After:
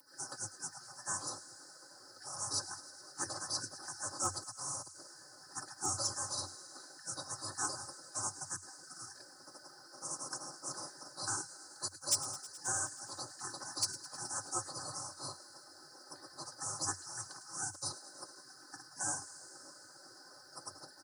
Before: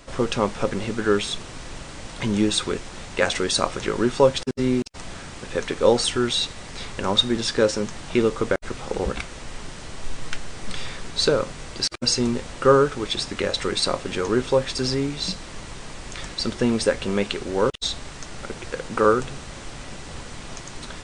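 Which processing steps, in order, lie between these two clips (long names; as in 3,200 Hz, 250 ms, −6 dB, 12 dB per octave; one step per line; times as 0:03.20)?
elliptic band-stop filter 1,100–6,300 Hz, stop band 50 dB
first-order pre-emphasis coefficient 0.97
gate on every frequency bin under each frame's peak −20 dB weak
high-shelf EQ 7,800 Hz −5.5 dB
comb filter 4.2 ms, depth 81%
in parallel at −12 dB: soft clipping −40 dBFS, distortion −13 dB
on the sum: frequency shifter +90 Hz
hard clipping −36 dBFS, distortion −18 dB
delay with a high-pass on its return 106 ms, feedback 81%, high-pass 1,900 Hz, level −16 dB
level +12 dB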